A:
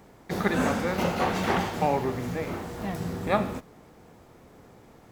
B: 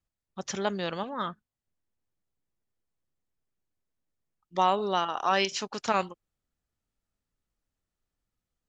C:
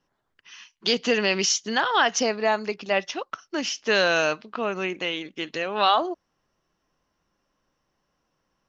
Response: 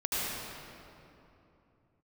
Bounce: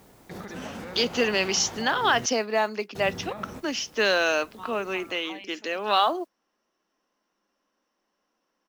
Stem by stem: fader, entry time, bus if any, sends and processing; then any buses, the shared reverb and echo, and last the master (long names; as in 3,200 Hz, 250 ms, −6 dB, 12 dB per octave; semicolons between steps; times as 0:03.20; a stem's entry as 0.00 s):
−2.0 dB, 0.00 s, muted 0:02.26–0:02.95, no send, downward compressor 2.5 to 1, threshold −32 dBFS, peak gain reduction 10 dB; bit-depth reduction 10 bits, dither triangular; brickwall limiter −27 dBFS, peak gain reduction 9.5 dB
−15.0 dB, 0.00 s, no send, step-sequenced phaser 6.8 Hz 720–3,500 Hz
−1.5 dB, 0.10 s, no send, Butterworth high-pass 200 Hz 48 dB per octave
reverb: not used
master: noise that follows the level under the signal 34 dB